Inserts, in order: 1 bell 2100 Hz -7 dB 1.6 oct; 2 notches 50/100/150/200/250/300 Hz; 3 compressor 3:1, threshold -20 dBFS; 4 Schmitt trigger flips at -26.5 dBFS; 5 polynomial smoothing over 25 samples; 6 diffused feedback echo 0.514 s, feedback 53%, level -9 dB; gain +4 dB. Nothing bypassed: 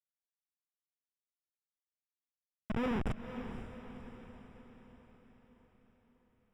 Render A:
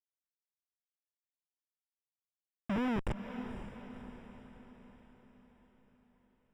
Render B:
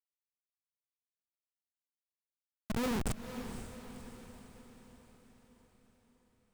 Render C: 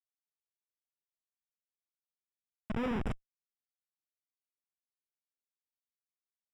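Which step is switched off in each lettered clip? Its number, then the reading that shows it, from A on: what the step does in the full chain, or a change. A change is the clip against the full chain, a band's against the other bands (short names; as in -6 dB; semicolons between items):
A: 2, 500 Hz band -2.0 dB; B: 5, 4 kHz band +6.5 dB; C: 6, echo-to-direct -7.5 dB to none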